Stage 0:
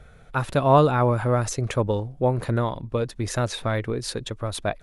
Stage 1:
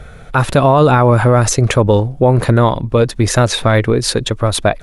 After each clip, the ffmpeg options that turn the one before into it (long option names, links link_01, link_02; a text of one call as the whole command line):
ffmpeg -i in.wav -af "alimiter=level_in=15dB:limit=-1dB:release=50:level=0:latency=1,volume=-1dB" out.wav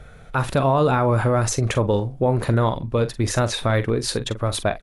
ffmpeg -i in.wav -filter_complex "[0:a]asplit=2[link_01][link_02];[link_02]adelay=44,volume=-12dB[link_03];[link_01][link_03]amix=inputs=2:normalize=0,volume=-8.5dB" out.wav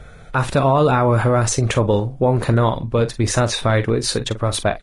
ffmpeg -i in.wav -af "volume=3dB" -ar 22050 -c:a libvorbis -b:a 32k out.ogg